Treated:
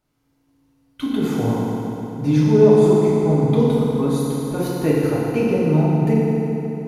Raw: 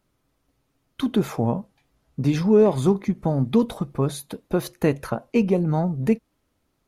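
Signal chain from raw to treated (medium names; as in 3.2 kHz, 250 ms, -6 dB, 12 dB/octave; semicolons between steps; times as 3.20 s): FDN reverb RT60 3.5 s, high-frequency decay 0.75×, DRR -7.5 dB; trim -5 dB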